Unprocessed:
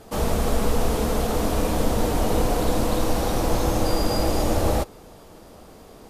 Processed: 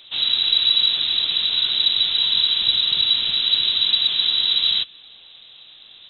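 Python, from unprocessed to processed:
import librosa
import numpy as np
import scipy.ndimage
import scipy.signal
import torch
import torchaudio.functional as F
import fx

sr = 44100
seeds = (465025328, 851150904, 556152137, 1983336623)

y = fx.freq_invert(x, sr, carrier_hz=3900)
y = fx.dynamic_eq(y, sr, hz=650.0, q=1.3, threshold_db=-46.0, ratio=4.0, max_db=-5)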